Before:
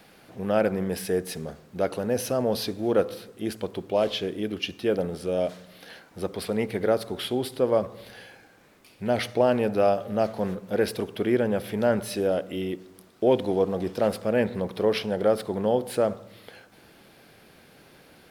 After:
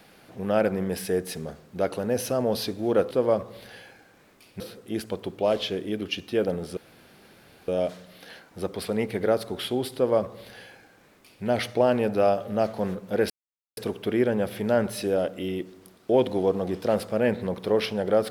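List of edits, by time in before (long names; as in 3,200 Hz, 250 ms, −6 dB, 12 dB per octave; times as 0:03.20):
0:05.28: splice in room tone 0.91 s
0:07.55–0:09.04: duplicate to 0:03.11
0:10.90: splice in silence 0.47 s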